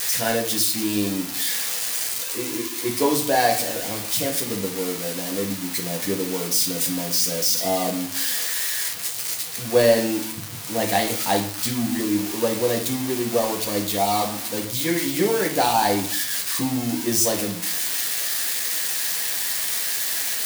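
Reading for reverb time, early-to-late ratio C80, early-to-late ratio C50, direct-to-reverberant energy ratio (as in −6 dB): 0.60 s, 12.5 dB, 8.5 dB, 0.0 dB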